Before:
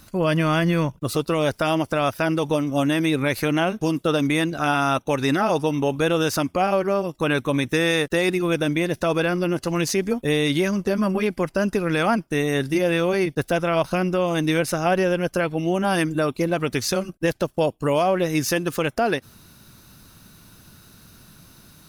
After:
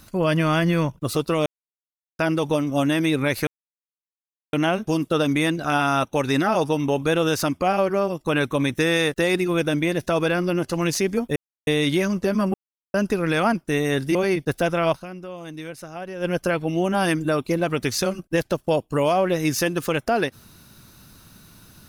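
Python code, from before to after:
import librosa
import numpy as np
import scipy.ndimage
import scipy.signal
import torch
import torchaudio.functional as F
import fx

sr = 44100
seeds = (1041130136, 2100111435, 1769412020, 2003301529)

y = fx.edit(x, sr, fx.silence(start_s=1.46, length_s=0.73),
    fx.insert_silence(at_s=3.47, length_s=1.06),
    fx.insert_silence(at_s=10.3, length_s=0.31),
    fx.silence(start_s=11.17, length_s=0.4),
    fx.cut(start_s=12.78, length_s=0.27),
    fx.fade_down_up(start_s=13.83, length_s=1.32, db=-14.0, fade_s=0.3, curve='exp'), tone=tone)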